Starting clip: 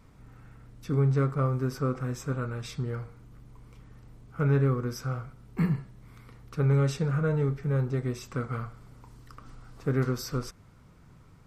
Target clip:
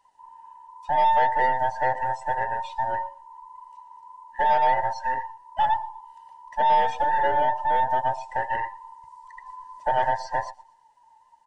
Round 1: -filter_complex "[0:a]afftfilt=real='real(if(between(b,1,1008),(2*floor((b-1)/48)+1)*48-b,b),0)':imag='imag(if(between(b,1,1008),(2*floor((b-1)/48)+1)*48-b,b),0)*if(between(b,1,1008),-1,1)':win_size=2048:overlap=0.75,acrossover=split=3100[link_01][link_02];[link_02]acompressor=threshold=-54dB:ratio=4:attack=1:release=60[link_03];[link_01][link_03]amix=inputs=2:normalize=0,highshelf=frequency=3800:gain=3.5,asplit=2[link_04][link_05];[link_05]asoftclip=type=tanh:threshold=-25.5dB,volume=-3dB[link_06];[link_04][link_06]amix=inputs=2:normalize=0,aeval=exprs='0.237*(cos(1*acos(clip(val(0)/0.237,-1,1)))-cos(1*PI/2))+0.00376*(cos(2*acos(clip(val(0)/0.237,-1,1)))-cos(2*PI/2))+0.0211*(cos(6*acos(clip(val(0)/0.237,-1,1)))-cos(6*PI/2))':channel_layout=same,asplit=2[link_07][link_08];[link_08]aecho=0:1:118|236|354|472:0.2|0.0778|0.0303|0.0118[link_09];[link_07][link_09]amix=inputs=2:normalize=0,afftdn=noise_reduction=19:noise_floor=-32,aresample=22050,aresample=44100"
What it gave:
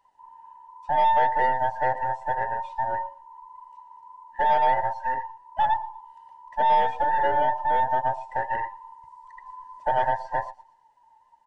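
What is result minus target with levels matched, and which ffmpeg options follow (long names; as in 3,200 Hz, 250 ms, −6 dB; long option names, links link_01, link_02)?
8,000 Hz band −12.0 dB
-filter_complex "[0:a]afftfilt=real='real(if(between(b,1,1008),(2*floor((b-1)/48)+1)*48-b,b),0)':imag='imag(if(between(b,1,1008),(2*floor((b-1)/48)+1)*48-b,b),0)*if(between(b,1,1008),-1,1)':win_size=2048:overlap=0.75,acrossover=split=3100[link_01][link_02];[link_02]acompressor=threshold=-54dB:ratio=4:attack=1:release=60[link_03];[link_01][link_03]amix=inputs=2:normalize=0,highshelf=frequency=3800:gain=13.5,asplit=2[link_04][link_05];[link_05]asoftclip=type=tanh:threshold=-25.5dB,volume=-3dB[link_06];[link_04][link_06]amix=inputs=2:normalize=0,aeval=exprs='0.237*(cos(1*acos(clip(val(0)/0.237,-1,1)))-cos(1*PI/2))+0.00376*(cos(2*acos(clip(val(0)/0.237,-1,1)))-cos(2*PI/2))+0.0211*(cos(6*acos(clip(val(0)/0.237,-1,1)))-cos(6*PI/2))':channel_layout=same,asplit=2[link_07][link_08];[link_08]aecho=0:1:118|236|354|472:0.2|0.0778|0.0303|0.0118[link_09];[link_07][link_09]amix=inputs=2:normalize=0,afftdn=noise_reduction=19:noise_floor=-32,aresample=22050,aresample=44100"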